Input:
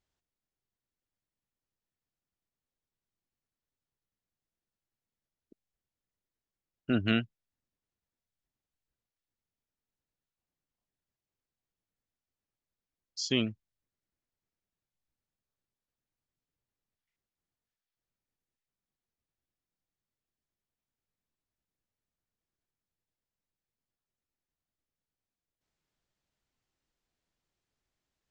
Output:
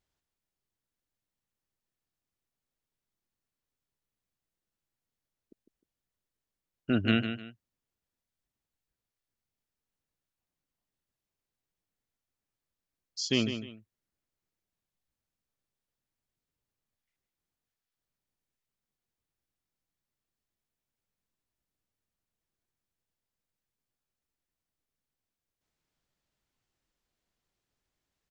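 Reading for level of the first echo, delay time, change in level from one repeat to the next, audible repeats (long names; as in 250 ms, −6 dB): −9.0 dB, 153 ms, −10.5 dB, 2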